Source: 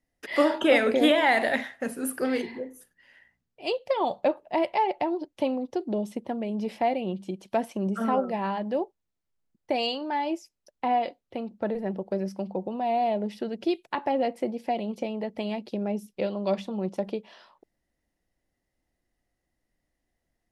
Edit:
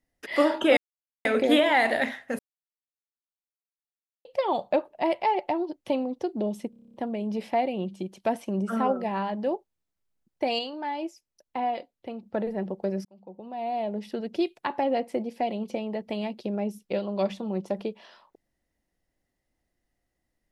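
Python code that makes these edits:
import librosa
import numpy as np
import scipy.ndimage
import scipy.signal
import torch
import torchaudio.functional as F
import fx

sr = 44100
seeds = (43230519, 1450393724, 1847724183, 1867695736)

y = fx.edit(x, sr, fx.insert_silence(at_s=0.77, length_s=0.48),
    fx.silence(start_s=1.91, length_s=1.86),
    fx.stutter(start_s=6.22, slice_s=0.03, count=9),
    fx.clip_gain(start_s=9.87, length_s=1.67, db=-3.5),
    fx.fade_in_span(start_s=12.33, length_s=1.17), tone=tone)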